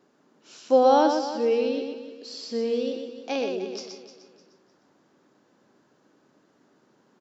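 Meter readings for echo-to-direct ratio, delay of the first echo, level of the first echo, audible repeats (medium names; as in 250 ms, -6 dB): -4.5 dB, 123 ms, -5.5 dB, 6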